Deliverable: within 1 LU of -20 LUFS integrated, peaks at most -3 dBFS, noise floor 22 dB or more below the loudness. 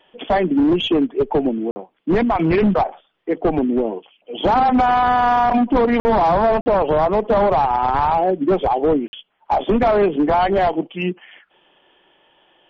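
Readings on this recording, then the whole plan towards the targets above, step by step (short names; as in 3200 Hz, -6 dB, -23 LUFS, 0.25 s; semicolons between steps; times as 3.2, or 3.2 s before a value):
dropouts 4; longest dropout 50 ms; loudness -18.0 LUFS; peak -9.0 dBFS; loudness target -20.0 LUFS
-> interpolate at 1.71/6/6.61/9.08, 50 ms; gain -2 dB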